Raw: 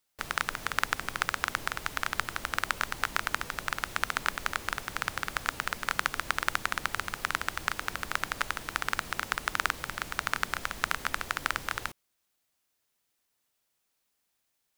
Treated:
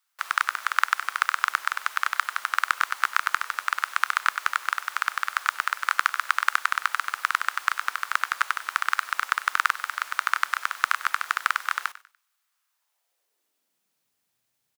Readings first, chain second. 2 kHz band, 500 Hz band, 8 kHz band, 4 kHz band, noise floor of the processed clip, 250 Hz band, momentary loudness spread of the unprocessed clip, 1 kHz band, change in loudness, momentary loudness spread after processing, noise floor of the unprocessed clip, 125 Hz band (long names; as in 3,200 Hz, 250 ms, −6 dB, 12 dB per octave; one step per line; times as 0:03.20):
+6.0 dB, −9.5 dB, +1.5 dB, +2.0 dB, −77 dBFS, below −20 dB, 3 LU, +7.5 dB, +6.0 dB, 3 LU, −78 dBFS, below −35 dB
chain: high-pass filter sweep 1,200 Hz → 110 Hz, 0:12.68–0:14.14
echo with shifted repeats 97 ms, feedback 32%, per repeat +45 Hz, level −17 dB
level +1 dB